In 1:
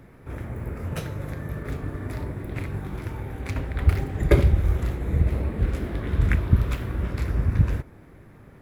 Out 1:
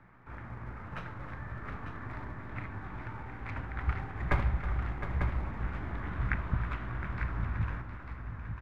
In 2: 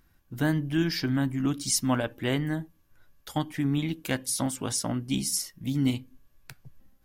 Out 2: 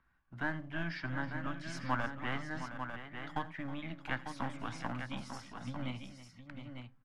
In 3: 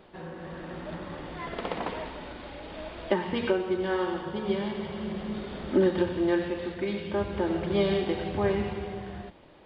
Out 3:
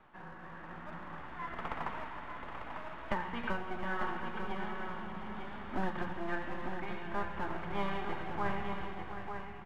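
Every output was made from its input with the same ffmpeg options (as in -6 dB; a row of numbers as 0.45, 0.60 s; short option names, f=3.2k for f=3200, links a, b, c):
-filter_complex "[0:a]lowpass=1.3k,lowshelf=f=280:g=-11.5,acrossover=split=200|310|860[a][b][c][d];[a]asplit=2[e][f];[f]adelay=17,volume=-4dB[g];[e][g]amix=inputs=2:normalize=0[h];[b]acompressor=threshold=-44dB:ratio=6[i];[c]aeval=exprs='abs(val(0))':c=same[j];[d]acontrast=82[k];[h][i][j][k]amix=inputs=4:normalize=0,aecho=1:1:84|319|713|897:0.1|0.168|0.282|0.422,volume=-3.5dB"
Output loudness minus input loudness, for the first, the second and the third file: -11.0, -12.0, -10.0 LU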